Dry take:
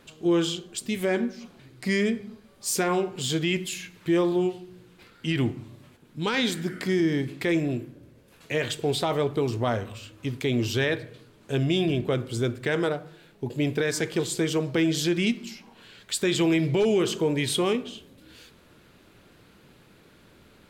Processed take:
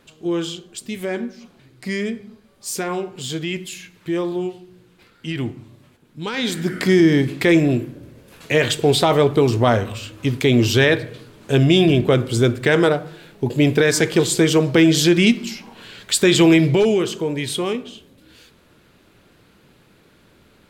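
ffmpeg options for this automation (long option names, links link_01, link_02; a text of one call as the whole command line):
ffmpeg -i in.wav -af "volume=10dB,afade=type=in:start_time=6.36:duration=0.47:silence=0.316228,afade=type=out:start_time=16.52:duration=0.58:silence=0.375837" out.wav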